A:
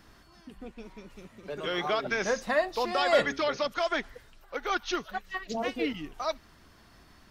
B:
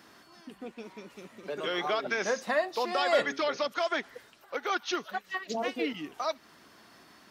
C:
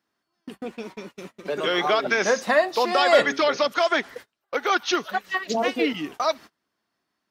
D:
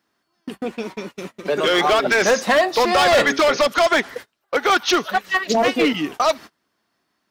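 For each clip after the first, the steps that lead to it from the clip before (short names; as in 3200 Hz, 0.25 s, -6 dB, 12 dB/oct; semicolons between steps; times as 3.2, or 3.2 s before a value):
HPF 220 Hz 12 dB/oct; in parallel at +1 dB: compressor, threshold -36 dBFS, peak gain reduction 16.5 dB; on the sum: gain -3.5 dB
gate -47 dBFS, range -31 dB; gain +8.5 dB
overloaded stage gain 18.5 dB; gain +7 dB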